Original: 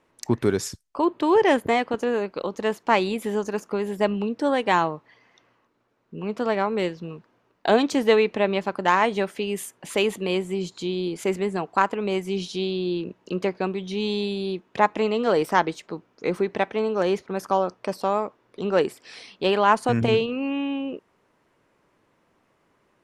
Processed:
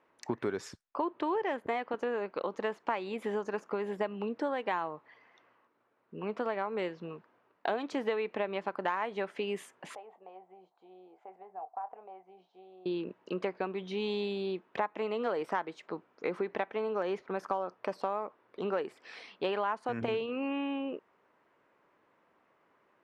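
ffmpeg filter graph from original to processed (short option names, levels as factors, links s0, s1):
-filter_complex "[0:a]asettb=1/sr,asplit=3[s0][s1][s2];[s0]atrim=end=9.954[s3];[s1]atrim=start=9.95:end=12.86,asetpts=PTS-STARTPTS,afade=t=in:d=0.004:c=qsin,afade=t=out:st=2.906:d=0.004:c=qsin,acompressor=threshold=0.0708:ratio=5:attack=3.2:release=140:knee=1:detection=peak,bandpass=f=750:t=q:w=8.7,asplit=2[s4][s5];[s5]adelay=27,volume=0.266[s6];[s4][s6]amix=inputs=2:normalize=0,atrim=end_sample=128331[s7];[s2]atrim=start=12.856[s8];[s3][s7]acrossfade=d=0.004:c1=hsin:c2=qsin[s9];[s9][s8]acrossfade=d=0.004:c1=qsin:c2=hsin,lowpass=1700,aemphasis=mode=production:type=riaa,acompressor=threshold=0.0398:ratio=6,volume=0.891"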